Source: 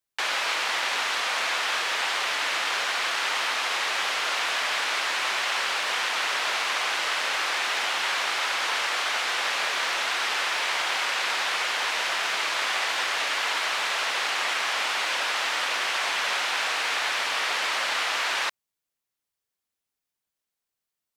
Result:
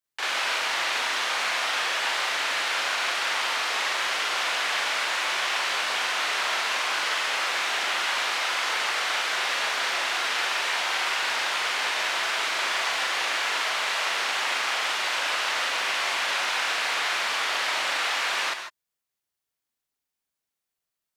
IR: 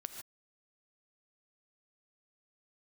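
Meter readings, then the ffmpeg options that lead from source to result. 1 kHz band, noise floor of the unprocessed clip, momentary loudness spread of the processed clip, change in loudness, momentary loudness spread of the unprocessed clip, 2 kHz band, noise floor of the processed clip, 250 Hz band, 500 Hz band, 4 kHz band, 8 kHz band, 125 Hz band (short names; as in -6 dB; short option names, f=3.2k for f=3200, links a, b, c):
0.0 dB, under -85 dBFS, 0 LU, 0.0 dB, 0 LU, 0.0 dB, under -85 dBFS, +0.5 dB, +0.5 dB, 0.0 dB, 0.0 dB, n/a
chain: -filter_complex "[0:a]asplit=2[a][b];[1:a]atrim=start_sample=2205,adelay=41[c];[b][c]afir=irnorm=-1:irlink=0,volume=5.5dB[d];[a][d]amix=inputs=2:normalize=0,volume=-4.5dB"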